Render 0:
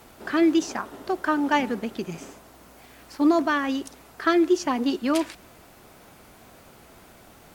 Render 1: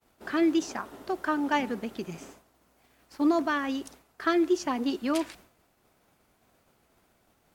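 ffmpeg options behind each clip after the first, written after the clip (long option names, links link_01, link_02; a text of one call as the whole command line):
ffmpeg -i in.wav -af "agate=range=-33dB:threshold=-41dB:ratio=3:detection=peak,volume=-4.5dB" out.wav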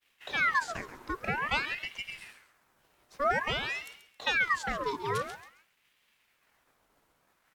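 ffmpeg -i in.wav -filter_complex "[0:a]asplit=2[link_01][link_02];[link_02]aecho=0:1:135|270|405:0.251|0.0728|0.0211[link_03];[link_01][link_03]amix=inputs=2:normalize=0,aeval=exprs='val(0)*sin(2*PI*1600*n/s+1600*0.6/0.5*sin(2*PI*0.5*n/s))':channel_layout=same,volume=-1.5dB" out.wav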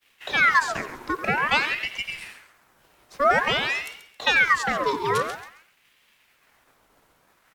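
ffmpeg -i in.wav -filter_complex "[0:a]acrossover=split=130|1700[link_01][link_02][link_03];[link_01]acompressor=threshold=-54dB:ratio=6[link_04];[link_04][link_02][link_03]amix=inputs=3:normalize=0,asplit=2[link_05][link_06];[link_06]adelay=90,highpass=300,lowpass=3400,asoftclip=type=hard:threshold=-25dB,volume=-11dB[link_07];[link_05][link_07]amix=inputs=2:normalize=0,volume=8.5dB" out.wav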